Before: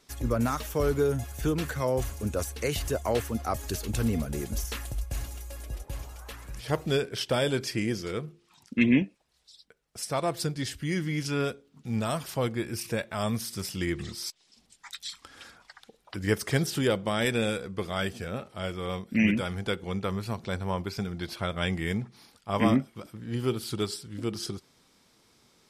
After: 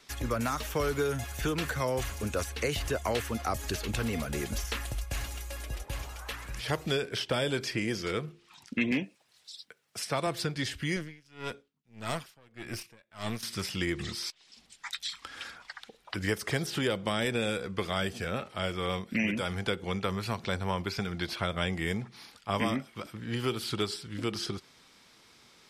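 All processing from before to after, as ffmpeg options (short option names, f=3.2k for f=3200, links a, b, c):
-filter_complex "[0:a]asettb=1/sr,asplit=3[a][b][c];[a]atrim=end=8.914[d];[b]atrim=start=8.91:end=10.27,asetpts=PTS-STARTPTS,afade=t=in:d=0.004:c=qsin,afade=t=out:st=1.356:d=0.004:c=qsin,highpass=f=89:w=0.5412,highpass=f=89:w=1.3066,highshelf=f=6.7k:g=7.5,asoftclip=type=hard:threshold=-14.5dB[e];[c]atrim=start=10.266[f];[d][e]acrossfade=d=0.004:c1=hsin:c2=qsin[g];[g][f]acrossfade=d=0.004:c1=qsin:c2=hsin,asettb=1/sr,asplit=3[h][i][j];[h]atrim=end=10.964[k];[i]atrim=start=10.96:end=13.43,asetpts=PTS-STARTPTS,afade=t=in:d=0.004:c=qsin,afade=t=out:st=2.466:d=0.004:c=qsin,aeval=exprs='(tanh(17.8*val(0)+0.7)-tanh(0.7))/17.8':c=same,aeval=exprs='val(0)*pow(10,-30*(0.5-0.5*cos(2*PI*1.7*n/s))/20)':c=same[l];[j]atrim=start=13.426[m];[k][l]acrossfade=d=0.004:c1=hsin:c2=qsin[n];[n][m]acrossfade=d=0.004:c1=qsin:c2=hsin,equalizer=f=2.3k:t=o:w=2.7:g=8,acrossover=split=450|1000|4200[o][p][q][r];[o]acompressor=threshold=-31dB:ratio=4[s];[p]acompressor=threshold=-35dB:ratio=4[t];[q]acompressor=threshold=-36dB:ratio=4[u];[r]acompressor=threshold=-41dB:ratio=4[v];[s][t][u][v]amix=inputs=4:normalize=0"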